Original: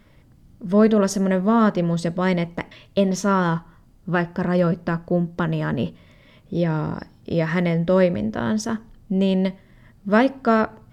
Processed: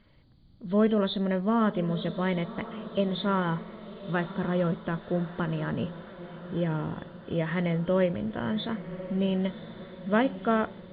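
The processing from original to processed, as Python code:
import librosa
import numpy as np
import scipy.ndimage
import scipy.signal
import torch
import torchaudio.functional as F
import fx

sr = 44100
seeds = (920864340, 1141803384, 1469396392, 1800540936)

y = fx.freq_compress(x, sr, knee_hz=3000.0, ratio=4.0)
y = fx.echo_diffused(y, sr, ms=1099, feedback_pct=58, wet_db=-13.5)
y = F.gain(torch.from_numpy(y), -7.5).numpy()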